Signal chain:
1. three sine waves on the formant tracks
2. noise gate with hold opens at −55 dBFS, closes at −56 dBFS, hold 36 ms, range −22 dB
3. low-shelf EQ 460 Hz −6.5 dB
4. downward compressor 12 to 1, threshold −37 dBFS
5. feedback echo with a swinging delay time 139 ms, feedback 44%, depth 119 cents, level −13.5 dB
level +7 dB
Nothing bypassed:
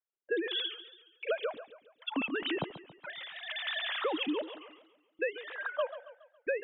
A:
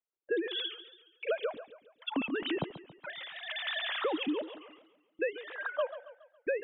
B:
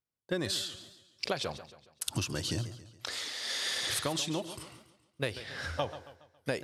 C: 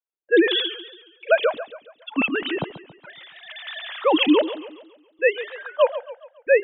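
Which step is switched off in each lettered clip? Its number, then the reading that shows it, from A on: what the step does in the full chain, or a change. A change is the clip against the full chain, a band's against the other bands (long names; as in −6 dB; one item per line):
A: 3, 125 Hz band +2.5 dB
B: 1, 125 Hz band +16.0 dB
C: 4, average gain reduction 7.5 dB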